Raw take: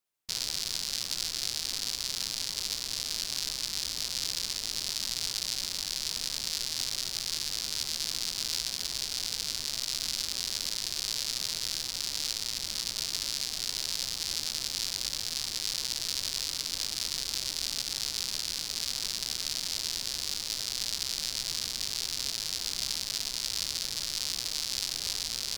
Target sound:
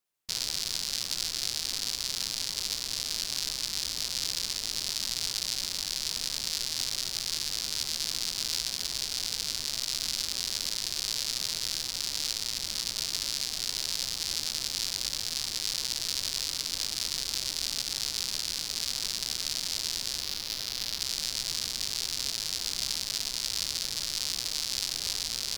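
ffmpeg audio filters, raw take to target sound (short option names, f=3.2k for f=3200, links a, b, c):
-filter_complex "[0:a]asettb=1/sr,asplit=3[a][b][c];[a]atrim=end=20.214[d];[b]atrim=start=20.21:end=21.01,asetpts=PTS-STARTPTS,afade=t=in:d=0.004:c=qsin,afade=t=out:st=0.796:d=0.004:c=qsin,equalizer=f=8k:t=o:w=0.71:g=-6.5[e];[c]atrim=start=21.006[f];[d][e]acrossfade=d=0.004:c1=hsin:c2=qsin[g];[g][f]acrossfade=d=0.004:c1=qsin:c2=hsin,volume=1dB"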